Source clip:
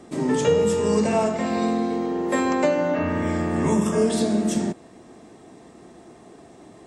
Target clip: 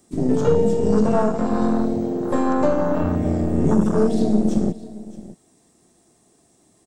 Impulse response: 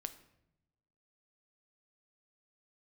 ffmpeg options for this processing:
-filter_complex "[0:a]aemphasis=mode=production:type=50fm,aeval=exprs='0.447*(cos(1*acos(clip(val(0)/0.447,-1,1)))-cos(1*PI/2))+0.00447*(cos(4*acos(clip(val(0)/0.447,-1,1)))-cos(4*PI/2))+0.00316*(cos(6*acos(clip(val(0)/0.447,-1,1)))-cos(6*PI/2))+0.0398*(cos(8*acos(clip(val(0)/0.447,-1,1)))-cos(8*PI/2))':channel_layout=same,afwtdn=0.0794,bass=frequency=250:gain=5,treble=frequency=4000:gain=9,acrossover=split=5300[link_01][link_02];[link_02]acompressor=threshold=-56dB:ratio=4:attack=1:release=60[link_03];[link_01][link_03]amix=inputs=2:normalize=0,asplit=2[link_04][link_05];[link_05]aecho=0:1:617:0.133[link_06];[link_04][link_06]amix=inputs=2:normalize=0,volume=1dB"

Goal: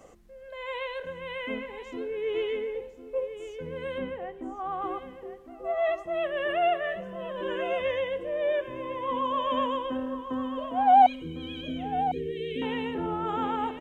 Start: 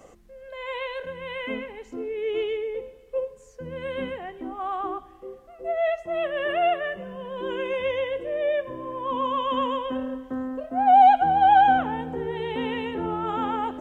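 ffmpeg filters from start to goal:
ffmpeg -i in.wav -filter_complex "[0:a]asettb=1/sr,asplit=3[link_01][link_02][link_03];[link_01]atrim=end=3.984[link_04];[link_02]atrim=start=3.98:end=4.82,asetpts=PTS-STARTPTS,afade=type=in:duration=0.004:curve=qsin,afade=type=out:start_time=0.836:duration=0.004:curve=qsin,highshelf=frequency=2500:gain=-9[link_05];[link_03]atrim=start=4.816[link_06];[link_04][link_05]acrossfade=duration=0.004:curve1=hsin:curve2=qsin[link_07];[link_07][link_06]acrossfade=duration=0.004:curve1=qsin:curve2=hsin,asettb=1/sr,asplit=3[link_08][link_09][link_10];[link_08]atrim=end=11.064[link_11];[link_09]atrim=start=11.06:end=12.62,asetpts=PTS-STARTPTS,afade=type=in:duration=0.004:curve=qsin,afade=type=out:start_time=1.556:duration=0.004:curve=qsin,asuperstop=centerf=1000:order=12:qfactor=0.65[link_12];[link_10]atrim=start=12.616[link_13];[link_11][link_12]acrossfade=duration=0.004:curve1=hsin:curve2=qsin[link_14];[link_14][link_13]acrossfade=duration=0.004:curve1=qsin:curve2=hsin,aecho=1:1:1052:0.282,volume=-2.5dB" out.wav

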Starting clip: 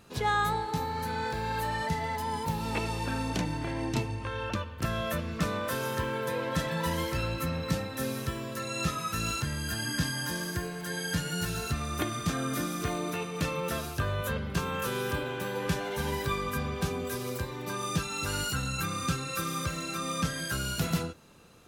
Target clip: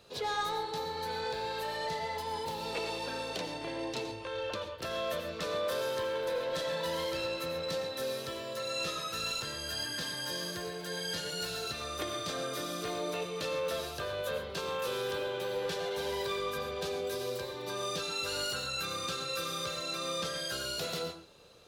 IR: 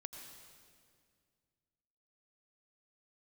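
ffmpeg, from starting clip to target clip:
-filter_complex "[0:a]equalizer=frequency=250:width_type=o:width=1:gain=-6,equalizer=frequency=500:width_type=o:width=1:gain=11,equalizer=frequency=4000:width_type=o:width=1:gain=11,acrossover=split=200|5100[link_01][link_02][link_03];[link_01]acompressor=threshold=-45dB:ratio=5[link_04];[link_04][link_02][link_03]amix=inputs=3:normalize=0,asoftclip=type=tanh:threshold=-21dB[link_05];[1:a]atrim=start_sample=2205,afade=type=out:start_time=0.19:duration=0.01,atrim=end_sample=8820[link_06];[link_05][link_06]afir=irnorm=-1:irlink=0,volume=-1.5dB"

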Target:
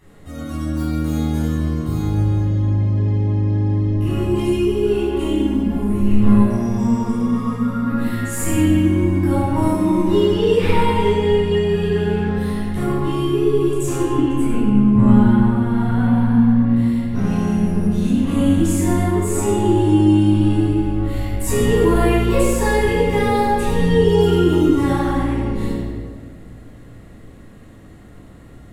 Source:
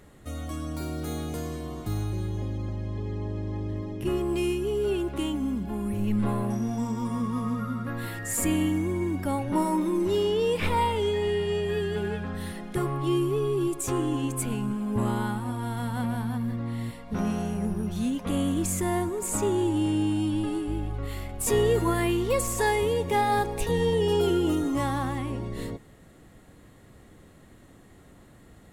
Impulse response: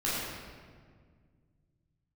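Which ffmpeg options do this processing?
-filter_complex "[0:a]asettb=1/sr,asplit=3[link_01][link_02][link_03];[link_01]atrim=end=14.104[link_04];[link_02]atrim=start=14.1:end=16.76,asetpts=PTS-STARTPTS,afade=type=in:duration=0.004:curve=qsin,afade=type=out:start_time=2.656:duration=0.004:curve=qsin,bass=frequency=250:gain=6,treble=frequency=4000:gain=-11[link_05];[link_03]atrim=start=16.756[link_06];[link_04][link_05]acrossfade=duration=0.004:curve1=hsin:curve2=qsin[link_07];[link_07][link_06]acrossfade=duration=0.004:curve1=qsin:curve2=hsin[link_08];[1:a]atrim=start_sample=2205[link_09];[link_08][link_09]afir=irnorm=-1:irlink=0,volume=-2dB"

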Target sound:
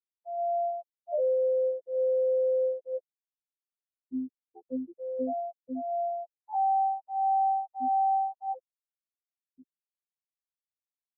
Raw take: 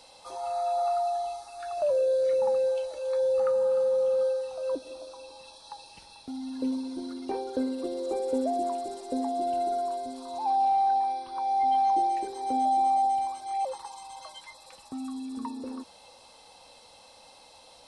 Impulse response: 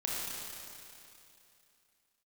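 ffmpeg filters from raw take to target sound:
-af "atempo=1.6,afftfilt=real='re*gte(hypot(re,im),0.282)':imag='im*gte(hypot(re,im),0.282)':win_size=1024:overlap=0.75,afftfilt=real='hypot(re,im)*cos(PI*b)':imag='0':win_size=2048:overlap=0.75"

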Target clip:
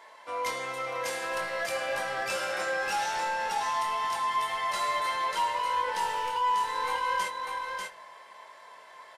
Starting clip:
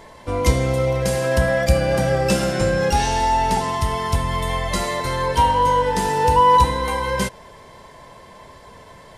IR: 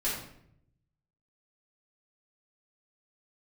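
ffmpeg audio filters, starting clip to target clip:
-filter_complex "[0:a]highpass=1100,highshelf=frequency=2600:gain=-11.5,acompressor=threshold=-26dB:ratio=6,volume=27dB,asoftclip=hard,volume=-27dB,asplit=2[link_01][link_02];[link_02]adelay=22,volume=-7dB[link_03];[link_01][link_03]amix=inputs=2:normalize=0,aecho=1:1:592:0.631,asplit=2[link_04][link_05];[1:a]atrim=start_sample=2205[link_06];[link_05][link_06]afir=irnorm=-1:irlink=0,volume=-21.5dB[link_07];[link_04][link_07]amix=inputs=2:normalize=0,aresample=32000,aresample=44100,volume=-1dB"

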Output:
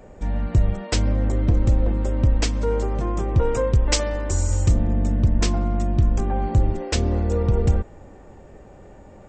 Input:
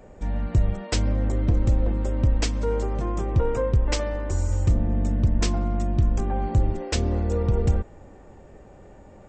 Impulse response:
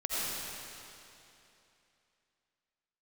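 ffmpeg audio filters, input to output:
-filter_complex "[0:a]asettb=1/sr,asplit=3[link_01][link_02][link_03];[link_01]atrim=end=3.414[link_04];[link_02]atrim=start=3.41:end=4.93,asetpts=PTS-STARTPTS,afade=type=in:duration=0.004:curve=qsin,afade=type=out:start_time=1.516:duration=0.004:curve=qsin,highshelf=frequency=4200:gain=10.5[link_05];[link_03]atrim=start=4.926[link_06];[link_04][link_05]acrossfade=duration=0.004:curve1=hsin:curve2=qsin[link_07];[link_07][link_06]acrossfade=duration=0.004:curve1=qsin:curve2=hsin,volume=2.5dB"

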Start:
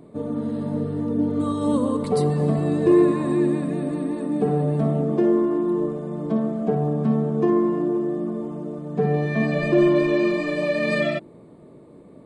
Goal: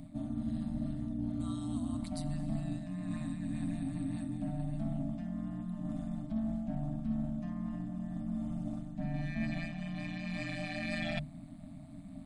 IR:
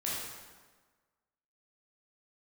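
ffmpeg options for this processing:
-af "tremolo=f=170:d=0.857,equalizer=frequency=1000:width_type=o:width=1.4:gain=-15,bandreject=frequency=50:width_type=h:width=6,bandreject=frequency=100:width_type=h:width=6,bandreject=frequency=150:width_type=h:width=6,areverse,acompressor=threshold=-37dB:ratio=10,areverse,afftfilt=real='re*(1-between(b*sr/4096,300,600))':imag='im*(1-between(b*sr/4096,300,600))':win_size=4096:overlap=0.75,volume=7dB"

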